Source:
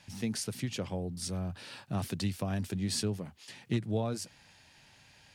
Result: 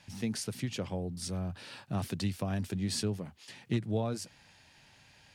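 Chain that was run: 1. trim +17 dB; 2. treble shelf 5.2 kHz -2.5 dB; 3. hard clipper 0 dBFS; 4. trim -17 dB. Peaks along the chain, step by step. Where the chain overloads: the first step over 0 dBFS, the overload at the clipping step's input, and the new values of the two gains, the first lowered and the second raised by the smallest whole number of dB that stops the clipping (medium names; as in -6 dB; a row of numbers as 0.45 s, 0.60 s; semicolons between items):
-3.5 dBFS, -3.5 dBFS, -3.5 dBFS, -20.5 dBFS; nothing clips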